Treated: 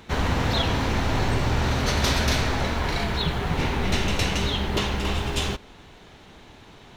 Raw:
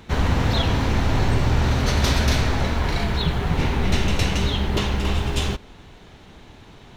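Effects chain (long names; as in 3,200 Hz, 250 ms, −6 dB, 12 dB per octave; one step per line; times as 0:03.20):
low-shelf EQ 230 Hz −5.5 dB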